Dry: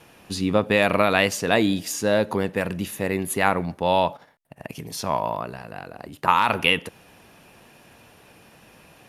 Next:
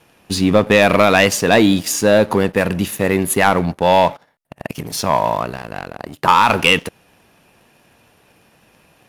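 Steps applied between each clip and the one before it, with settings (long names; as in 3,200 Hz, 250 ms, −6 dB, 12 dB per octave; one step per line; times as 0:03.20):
leveller curve on the samples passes 2
level +1.5 dB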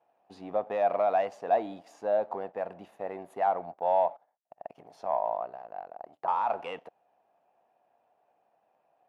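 resonant band-pass 720 Hz, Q 5
level −6.5 dB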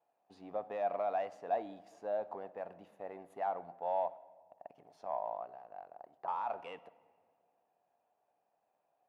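rectangular room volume 2,800 cubic metres, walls mixed, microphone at 0.31 metres
level −9 dB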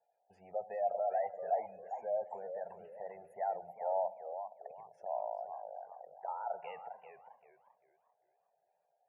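phaser with its sweep stopped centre 1,100 Hz, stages 6
gate on every frequency bin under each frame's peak −25 dB strong
feedback echo with a swinging delay time 398 ms, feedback 30%, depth 190 cents, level −9 dB
level +1 dB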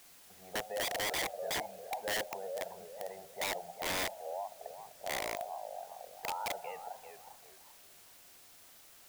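in parallel at −10 dB: bit-depth reduction 8 bits, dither triangular
on the sum: wrap-around overflow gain 29.5 dB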